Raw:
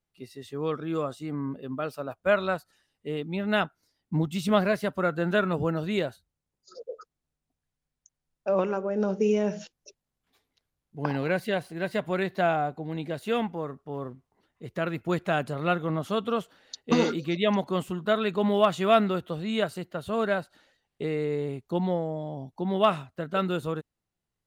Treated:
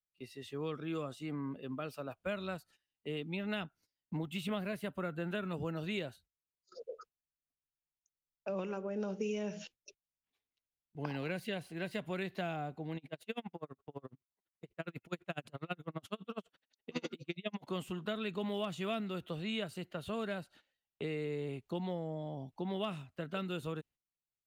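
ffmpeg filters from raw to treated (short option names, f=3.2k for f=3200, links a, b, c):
-filter_complex "[0:a]asettb=1/sr,asplit=3[a][b][c];[a]atrim=end=4.174[d];[b]atrim=start=4.17:end=5.45,asetpts=PTS-STARTPTS,afade=t=in:d=0.004:c=qsin,afade=t=out:st=1.276:d=0.004:c=qsin,equalizer=f=5.5k:w=1.5:g=-9[e];[c]atrim=start=5.446[f];[d][e]acrossfade=d=0.004:c1=hsin:c2=qsin[g];[g][f]acrossfade=d=0.004:c1=qsin:c2=hsin,asettb=1/sr,asplit=3[h][i][j];[h]atrim=end=12.974[k];[i]atrim=start=12.97:end=17.67,asetpts=PTS-STARTPTS,afade=t=in:d=0.004:c=qsin,afade=t=out:st=4.696:d=0.004:c=qsin,aeval=exprs='val(0)*pow(10,-39*(0.5-0.5*cos(2*PI*12*n/s))/20)':c=same[l];[j]atrim=start=17.666[m];[k][l]acrossfade=d=0.004:c1=hsin:c2=qsin[n];[n][m]acrossfade=d=0.004:c1=qsin:c2=hsin,agate=range=-15dB:threshold=-52dB:ratio=16:detection=peak,equalizer=f=2.7k:w=1.7:g=7.5,acrossover=split=330|4500[o][p][q];[o]acompressor=threshold=-33dB:ratio=4[r];[p]acompressor=threshold=-34dB:ratio=4[s];[q]acompressor=threshold=-46dB:ratio=4[t];[r][s][t]amix=inputs=3:normalize=0,volume=-6dB"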